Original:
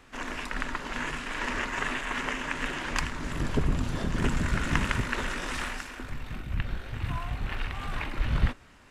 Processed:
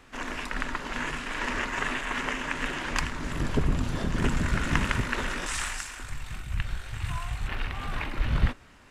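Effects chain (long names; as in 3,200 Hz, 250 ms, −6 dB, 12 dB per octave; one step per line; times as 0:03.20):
0:05.46–0:07.48: graphic EQ with 10 bands 250 Hz −10 dB, 500 Hz −6 dB, 8,000 Hz +11 dB
level +1 dB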